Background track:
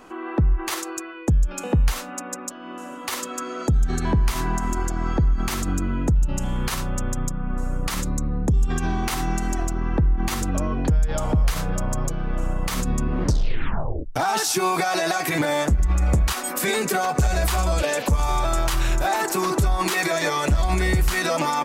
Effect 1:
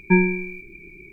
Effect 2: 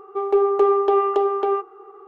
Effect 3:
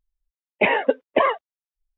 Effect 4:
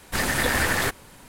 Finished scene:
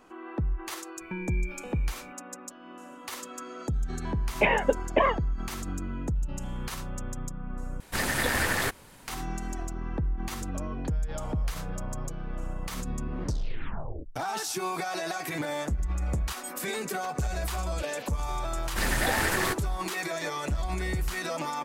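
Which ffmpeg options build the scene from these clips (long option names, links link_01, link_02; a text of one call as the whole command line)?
ffmpeg -i bed.wav -i cue0.wav -i cue1.wav -i cue2.wav -i cue3.wav -filter_complex "[4:a]asplit=2[link_01][link_02];[0:a]volume=-10dB[link_03];[1:a]acompressor=threshold=-26dB:ratio=6:attack=3.2:release=140:knee=1:detection=peak[link_04];[link_03]asplit=2[link_05][link_06];[link_05]atrim=end=7.804[link_07];[link_01]atrim=end=1.28,asetpts=PTS-STARTPTS,volume=-4dB[link_08];[link_06]atrim=start=9.076[link_09];[link_04]atrim=end=1.12,asetpts=PTS-STARTPTS,volume=-6.5dB,afade=type=in:duration=0.004:curve=hsin,afade=type=out:start_time=1.116:duration=0.004:curve=hsin,adelay=1010[link_10];[3:a]atrim=end=1.97,asetpts=PTS-STARTPTS,volume=-4.5dB,afade=type=in:duration=0.004:curve=hsin,afade=type=out:start_time=1.966:duration=0.004:curve=hsin,adelay=3800[link_11];[link_02]atrim=end=1.28,asetpts=PTS-STARTPTS,volume=-4.5dB,afade=type=in:duration=0.004:curve=hsin,afade=type=out:start_time=1.276:duration=0.004:curve=hsin,adelay=18630[link_12];[link_07][link_08]acrossfade=duration=0.004:curve1=hsin:curve2=hsin[link_13];[link_13][link_09]acrossfade=duration=0.004:curve1=hsin:curve2=hsin[link_14];[link_14][link_10][link_11][link_12]amix=inputs=4:normalize=0" out.wav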